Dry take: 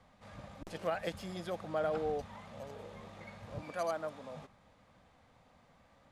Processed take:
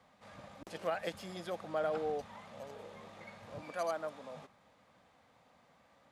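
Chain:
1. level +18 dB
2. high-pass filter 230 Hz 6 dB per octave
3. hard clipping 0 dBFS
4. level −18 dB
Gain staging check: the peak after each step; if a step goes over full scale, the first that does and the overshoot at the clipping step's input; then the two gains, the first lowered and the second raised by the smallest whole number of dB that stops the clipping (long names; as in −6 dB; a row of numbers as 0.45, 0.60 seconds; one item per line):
−5.5, −5.5, −5.5, −23.5 dBFS
no step passes full scale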